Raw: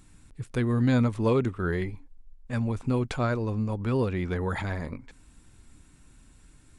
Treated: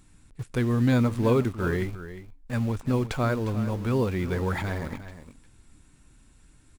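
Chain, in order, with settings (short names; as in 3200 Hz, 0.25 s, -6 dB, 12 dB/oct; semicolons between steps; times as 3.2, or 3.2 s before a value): in parallel at -9 dB: requantised 6-bit, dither none; on the sum: echo 0.355 s -13 dB; gain -1.5 dB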